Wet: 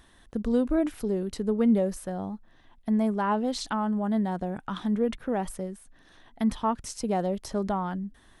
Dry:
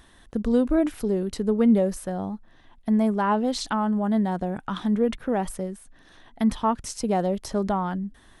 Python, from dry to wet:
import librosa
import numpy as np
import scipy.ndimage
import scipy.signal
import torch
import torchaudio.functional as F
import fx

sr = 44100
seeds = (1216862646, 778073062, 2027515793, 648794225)

y = x * 10.0 ** (-3.5 / 20.0)